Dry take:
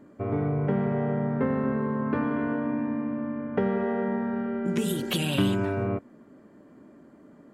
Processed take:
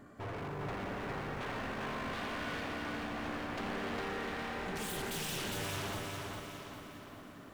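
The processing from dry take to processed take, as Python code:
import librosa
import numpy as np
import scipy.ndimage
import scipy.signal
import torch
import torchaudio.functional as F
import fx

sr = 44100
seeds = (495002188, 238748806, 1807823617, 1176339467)

p1 = fx.peak_eq(x, sr, hz=340.0, db=-13.5, octaves=1.1)
p2 = fx.notch(p1, sr, hz=930.0, q=20.0)
p3 = p2 + 0.39 * np.pad(p2, (int(2.7 * sr / 1000.0), 0))[:len(p2)]
p4 = fx.over_compress(p3, sr, threshold_db=-40.0, ratio=-1.0)
p5 = p3 + F.gain(torch.from_numpy(p4), 1.5).numpy()
p6 = 10.0 ** (-29.5 / 20.0) * (np.abs((p5 / 10.0 ** (-29.5 / 20.0) + 3.0) % 4.0 - 2.0) - 1.0)
p7 = fx.echo_feedback(p6, sr, ms=406, feedback_pct=48, wet_db=-3)
p8 = fx.echo_crushed(p7, sr, ms=174, feedback_pct=80, bits=9, wet_db=-12)
y = F.gain(torch.from_numpy(p8), -6.5).numpy()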